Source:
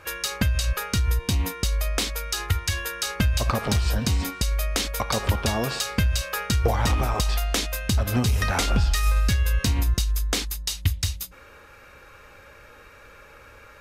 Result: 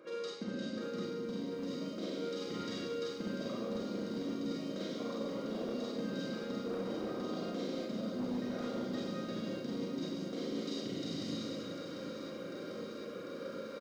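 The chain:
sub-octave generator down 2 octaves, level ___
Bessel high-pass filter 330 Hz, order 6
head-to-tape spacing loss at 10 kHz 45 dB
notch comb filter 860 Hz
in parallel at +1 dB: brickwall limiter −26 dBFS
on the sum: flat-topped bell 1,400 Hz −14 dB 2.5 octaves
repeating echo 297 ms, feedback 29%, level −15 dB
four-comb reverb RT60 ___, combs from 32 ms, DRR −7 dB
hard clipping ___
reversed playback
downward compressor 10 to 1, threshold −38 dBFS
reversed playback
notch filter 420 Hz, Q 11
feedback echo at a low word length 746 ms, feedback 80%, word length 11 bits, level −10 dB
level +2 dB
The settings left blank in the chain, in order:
−2 dB, 1.8 s, −19 dBFS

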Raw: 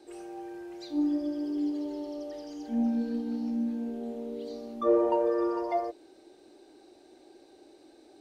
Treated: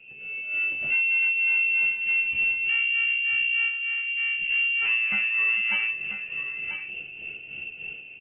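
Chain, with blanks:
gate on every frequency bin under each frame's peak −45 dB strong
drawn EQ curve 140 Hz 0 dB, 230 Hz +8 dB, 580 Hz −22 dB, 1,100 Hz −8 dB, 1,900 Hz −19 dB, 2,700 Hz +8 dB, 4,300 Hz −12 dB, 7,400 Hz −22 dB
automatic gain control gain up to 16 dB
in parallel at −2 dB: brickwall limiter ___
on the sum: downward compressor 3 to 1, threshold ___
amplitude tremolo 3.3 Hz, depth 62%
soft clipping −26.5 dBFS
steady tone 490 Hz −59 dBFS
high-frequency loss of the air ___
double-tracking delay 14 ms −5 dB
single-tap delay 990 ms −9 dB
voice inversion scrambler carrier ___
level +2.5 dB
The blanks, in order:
−10.5 dBFS, −21 dBFS, 160 metres, 3,000 Hz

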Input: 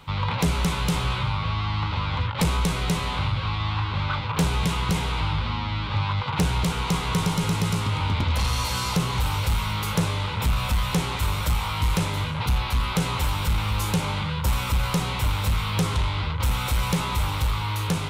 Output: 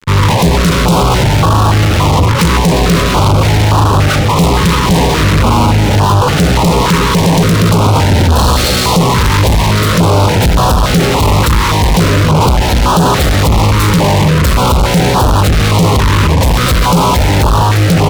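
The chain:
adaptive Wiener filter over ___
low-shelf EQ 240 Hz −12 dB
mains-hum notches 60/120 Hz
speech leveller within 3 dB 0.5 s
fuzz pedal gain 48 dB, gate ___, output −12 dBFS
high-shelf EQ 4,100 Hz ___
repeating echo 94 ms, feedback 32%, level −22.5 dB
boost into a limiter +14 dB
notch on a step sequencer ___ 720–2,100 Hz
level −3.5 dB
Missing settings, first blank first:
25 samples, −50 dBFS, −6 dB, 3.5 Hz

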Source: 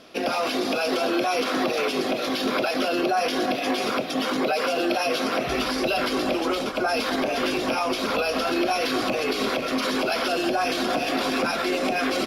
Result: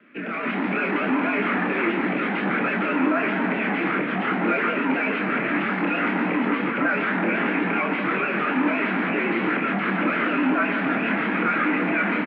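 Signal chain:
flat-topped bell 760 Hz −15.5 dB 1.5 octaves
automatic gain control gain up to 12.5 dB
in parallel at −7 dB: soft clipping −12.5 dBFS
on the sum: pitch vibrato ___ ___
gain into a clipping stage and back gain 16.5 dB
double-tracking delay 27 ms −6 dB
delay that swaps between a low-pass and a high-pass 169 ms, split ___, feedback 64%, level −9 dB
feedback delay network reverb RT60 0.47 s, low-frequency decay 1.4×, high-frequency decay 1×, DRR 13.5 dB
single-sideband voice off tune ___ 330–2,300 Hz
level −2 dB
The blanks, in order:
7.9 Hz, 93 cents, 2,300 Hz, −71 Hz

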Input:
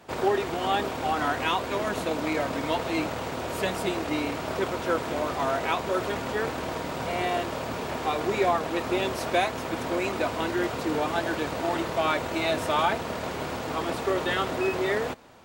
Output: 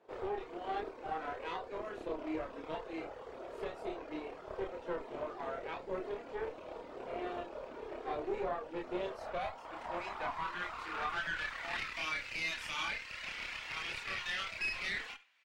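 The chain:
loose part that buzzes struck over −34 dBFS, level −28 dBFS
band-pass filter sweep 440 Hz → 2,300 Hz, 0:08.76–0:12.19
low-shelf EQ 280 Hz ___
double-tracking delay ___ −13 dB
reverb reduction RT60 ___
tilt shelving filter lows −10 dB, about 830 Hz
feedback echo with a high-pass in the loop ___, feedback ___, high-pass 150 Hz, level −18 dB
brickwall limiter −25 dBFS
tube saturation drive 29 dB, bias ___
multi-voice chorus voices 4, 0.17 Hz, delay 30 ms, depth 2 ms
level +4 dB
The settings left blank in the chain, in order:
+6.5 dB, 29 ms, 1.1 s, 70 ms, 28%, 0.75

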